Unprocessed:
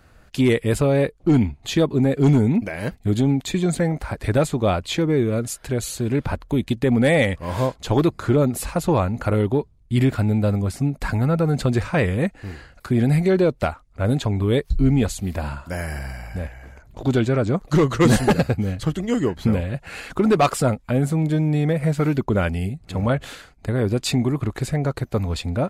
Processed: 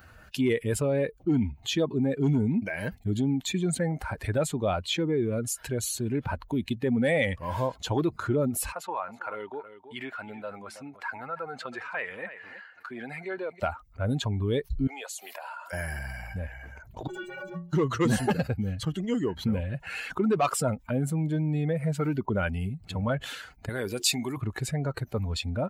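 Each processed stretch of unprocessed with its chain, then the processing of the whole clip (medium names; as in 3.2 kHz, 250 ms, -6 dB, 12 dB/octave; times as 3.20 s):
8.72–13.60 s: high-pass 1.2 kHz + tilt EQ -4.5 dB/octave + delay 323 ms -15.5 dB
14.87–15.73 s: high-pass 530 Hz 24 dB/octave + compression 2.5:1, threshold -38 dBFS
17.07–17.73 s: comb filter that takes the minimum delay 5.6 ms + inharmonic resonator 170 Hz, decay 0.39 s, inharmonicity 0.03
23.69–24.37 s: tilt EQ +3 dB/octave + de-hum 89.51 Hz, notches 5
whole clip: expander on every frequency bin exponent 1.5; high-pass 130 Hz 6 dB/octave; level flattener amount 50%; trim -6.5 dB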